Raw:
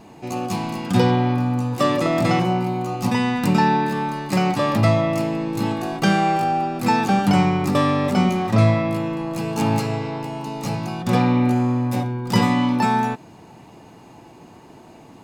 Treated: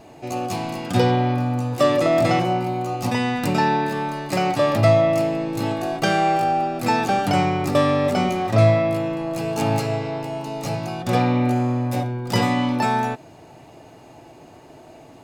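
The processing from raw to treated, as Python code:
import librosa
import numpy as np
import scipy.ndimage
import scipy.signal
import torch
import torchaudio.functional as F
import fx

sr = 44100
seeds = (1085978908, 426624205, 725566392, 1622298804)

y = fx.graphic_eq_31(x, sr, hz=(200, 630, 1000), db=(-11, 7, -5))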